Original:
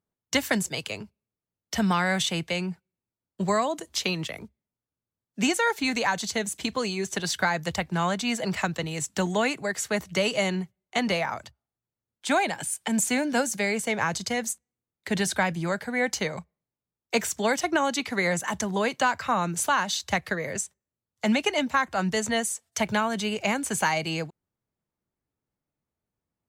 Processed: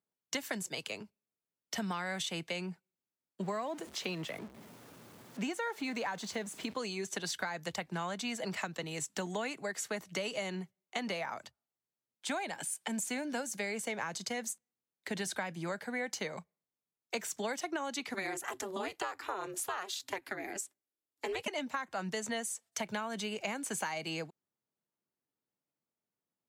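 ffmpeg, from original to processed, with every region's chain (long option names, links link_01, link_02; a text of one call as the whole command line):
ffmpeg -i in.wav -filter_complex "[0:a]asettb=1/sr,asplit=3[link_01][link_02][link_03];[link_01]atrim=end=3.424[link_04];[link_02]atrim=start=3.42:end=6.74,asetpts=PTS-STARTPTS,afade=type=in:duration=0.004:curve=qsin,afade=type=out:start_time=3.316:duration=0.004:curve=qsin,aeval=exprs='val(0)+0.5*0.0158*sgn(val(0))':channel_layout=same,highshelf=frequency=3200:gain=-9[link_05];[link_03]atrim=start=6.736[link_06];[link_04][link_05]acrossfade=duration=0.004:curve1=hsin:curve2=qsin[link_07];[link_07][link_06]acrossfade=duration=0.004:curve1=qsin:curve2=hsin,asettb=1/sr,asplit=3[link_08][link_09][link_10];[link_08]atrim=end=18.144[link_11];[link_09]atrim=start=18.14:end=21.48,asetpts=PTS-STARTPTS,afade=type=in:duration=0.004:curve=qsin,afade=type=out:start_time=3.336:duration=0.004:curve=qsin,equalizer=frequency=12000:width=2.2:gain=9,aeval=exprs='val(0)*sin(2*PI*190*n/s)':channel_layout=same,bandreject=frequency=6100:width=13[link_12];[link_10]atrim=start=21.476[link_13];[link_11][link_12]acrossfade=duration=0.004:curve1=hsin:curve2=qsin[link_14];[link_14][link_13]acrossfade=duration=0.004:curve1=qsin:curve2=hsin,highpass=190,acompressor=threshold=-28dB:ratio=5,volume=-5.5dB" out.wav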